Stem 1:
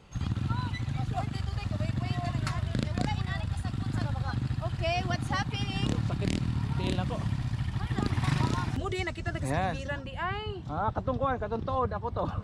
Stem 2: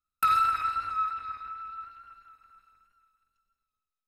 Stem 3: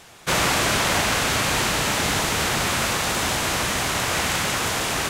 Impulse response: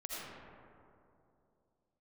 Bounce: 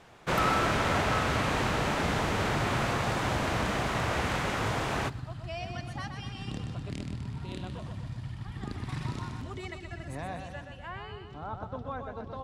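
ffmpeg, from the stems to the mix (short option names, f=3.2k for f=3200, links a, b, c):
-filter_complex "[0:a]adelay=650,volume=-9dB,asplit=2[a][b];[b]volume=-6.5dB[c];[1:a]adelay=150,volume=-8dB[d];[2:a]lowpass=f=1.3k:p=1,volume=-5dB,asplit=3[e][f][g];[f]volume=-9.5dB[h];[g]volume=-20.5dB[i];[3:a]atrim=start_sample=2205[j];[h][j]afir=irnorm=-1:irlink=0[k];[c][i]amix=inputs=2:normalize=0,aecho=0:1:125|250|375|500|625|750|875|1000:1|0.55|0.303|0.166|0.0915|0.0503|0.0277|0.0152[l];[a][d][e][k][l]amix=inputs=5:normalize=0"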